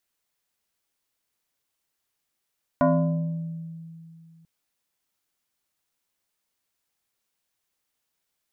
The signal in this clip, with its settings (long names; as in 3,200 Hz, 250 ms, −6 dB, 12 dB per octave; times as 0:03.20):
two-operator FM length 1.64 s, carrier 164 Hz, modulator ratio 2.59, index 2.1, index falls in 1.48 s exponential, decay 2.67 s, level −15 dB